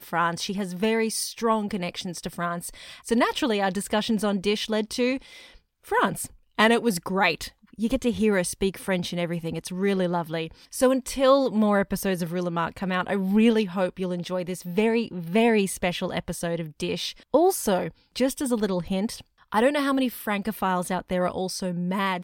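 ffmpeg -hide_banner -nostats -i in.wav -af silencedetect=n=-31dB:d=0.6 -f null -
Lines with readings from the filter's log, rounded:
silence_start: 5.17
silence_end: 5.89 | silence_duration: 0.71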